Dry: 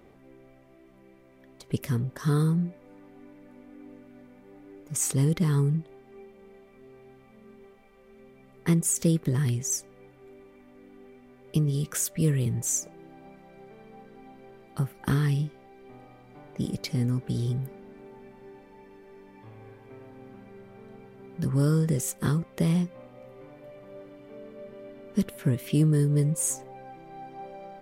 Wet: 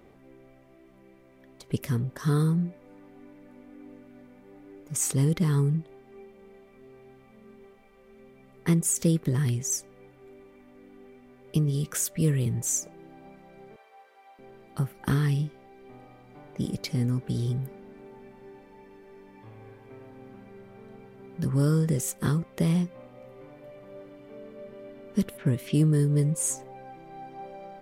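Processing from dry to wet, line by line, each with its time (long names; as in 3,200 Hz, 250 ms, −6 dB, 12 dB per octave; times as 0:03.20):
0:13.76–0:14.39: high-pass filter 600 Hz 24 dB per octave
0:25.37–0:26.57: low-pass that shuts in the quiet parts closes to 2,700 Hz, open at −22.5 dBFS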